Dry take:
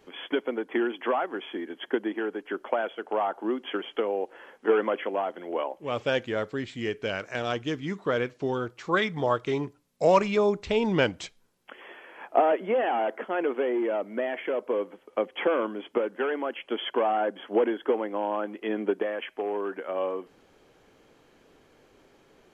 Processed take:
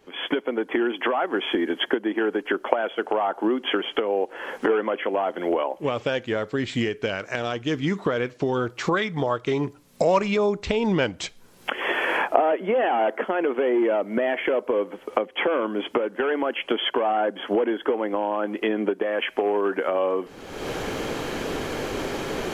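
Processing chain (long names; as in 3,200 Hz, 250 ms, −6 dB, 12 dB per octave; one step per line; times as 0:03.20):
camcorder AGC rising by 42 dB per second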